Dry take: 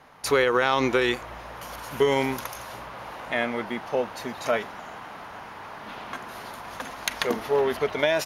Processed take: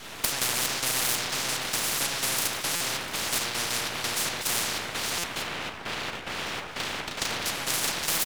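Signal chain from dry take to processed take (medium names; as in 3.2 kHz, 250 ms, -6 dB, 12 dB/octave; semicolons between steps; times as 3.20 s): CVSD coder 64 kbps; Butterworth band-stop 810 Hz, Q 3.2; peaking EQ 420 Hz -5 dB 2.9 oct; doubling 34 ms -4 dB; feedback delay 625 ms, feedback 43%, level -10 dB; trance gate "xxx..xxx..x" 182 bpm -12 dB; 5.42–7.46 s: low-pass 1.1 kHz 6 dB/octave; reverberation RT60 0.65 s, pre-delay 3 ms, DRR 2.5 dB; full-wave rectifier; buffer glitch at 2.75/5.18 s, samples 256, times 9; spectrum-flattening compressor 10:1; trim +1 dB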